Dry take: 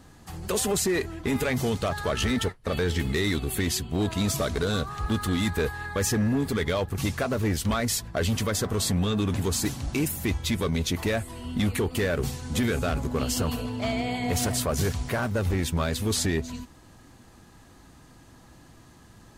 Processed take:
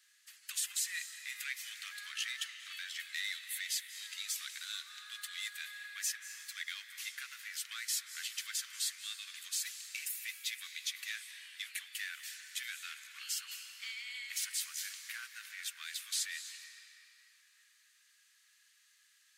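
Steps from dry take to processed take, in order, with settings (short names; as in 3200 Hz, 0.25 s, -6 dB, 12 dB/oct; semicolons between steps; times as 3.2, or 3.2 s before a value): steep high-pass 1700 Hz 36 dB/oct; on a send: reverb RT60 4.0 s, pre-delay 0.176 s, DRR 8 dB; on the sum: gain -7 dB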